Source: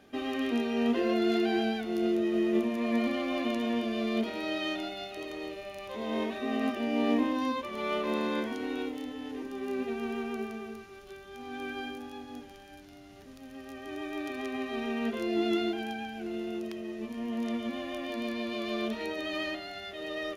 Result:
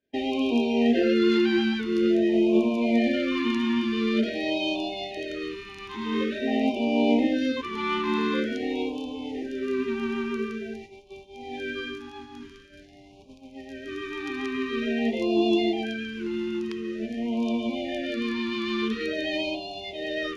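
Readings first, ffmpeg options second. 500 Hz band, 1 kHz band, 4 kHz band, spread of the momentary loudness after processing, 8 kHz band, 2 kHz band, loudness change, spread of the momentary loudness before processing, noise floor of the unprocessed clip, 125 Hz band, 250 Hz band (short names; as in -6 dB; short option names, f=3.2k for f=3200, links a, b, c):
+5.5 dB, +3.0 dB, +6.0 dB, 14 LU, n/a, +5.5 dB, +6.0 dB, 16 LU, -50 dBFS, +6.0 dB, +6.0 dB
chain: -af "lowpass=6.2k,bandreject=f=50:t=h:w=6,bandreject=f=100:t=h:w=6,bandreject=f=150:t=h:w=6,bandreject=f=200:t=h:w=6,bandreject=f=250:t=h:w=6,bandreject=f=300:t=h:w=6,agate=range=-33dB:threshold=-41dB:ratio=3:detection=peak,areverse,acompressor=mode=upward:threshold=-45dB:ratio=2.5,areverse,afftfilt=real='re*(1-between(b*sr/1024,550*pow(1600/550,0.5+0.5*sin(2*PI*0.47*pts/sr))/1.41,550*pow(1600/550,0.5+0.5*sin(2*PI*0.47*pts/sr))*1.41))':imag='im*(1-between(b*sr/1024,550*pow(1600/550,0.5+0.5*sin(2*PI*0.47*pts/sr))/1.41,550*pow(1600/550,0.5+0.5*sin(2*PI*0.47*pts/sr))*1.41))':win_size=1024:overlap=0.75,volume=6.5dB"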